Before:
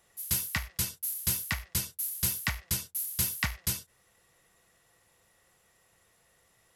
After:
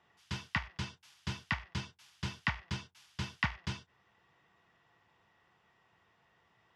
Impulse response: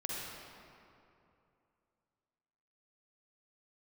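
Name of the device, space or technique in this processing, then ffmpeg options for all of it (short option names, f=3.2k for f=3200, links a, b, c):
guitar cabinet: -af "highpass=89,equalizer=f=530:t=q:w=4:g=-9,equalizer=f=930:t=q:w=4:g=5,equalizer=f=2.2k:t=q:w=4:g=-3,equalizer=f=4.1k:t=q:w=4:g=-7,lowpass=f=4.1k:w=0.5412,lowpass=f=4.1k:w=1.3066"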